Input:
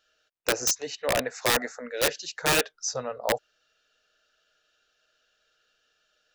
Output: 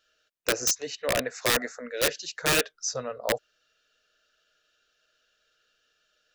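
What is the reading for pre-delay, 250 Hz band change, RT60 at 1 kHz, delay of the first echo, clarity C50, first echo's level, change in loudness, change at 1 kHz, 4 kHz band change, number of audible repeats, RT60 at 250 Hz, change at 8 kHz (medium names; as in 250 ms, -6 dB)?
no reverb, 0.0 dB, no reverb, no echo, no reverb, no echo, -0.5 dB, -3.0 dB, 0.0 dB, no echo, no reverb, 0.0 dB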